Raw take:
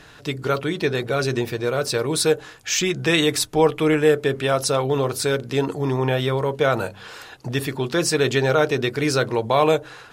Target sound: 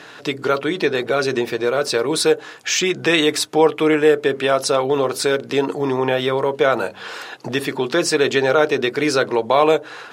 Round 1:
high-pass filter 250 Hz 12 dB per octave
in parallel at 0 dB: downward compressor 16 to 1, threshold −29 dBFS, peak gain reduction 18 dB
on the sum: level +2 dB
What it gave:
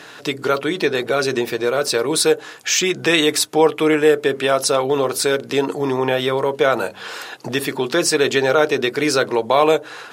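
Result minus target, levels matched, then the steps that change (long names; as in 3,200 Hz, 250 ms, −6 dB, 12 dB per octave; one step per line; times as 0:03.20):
8,000 Hz band +3.5 dB
add after high-pass filter: high-shelf EQ 7,900 Hz −9.5 dB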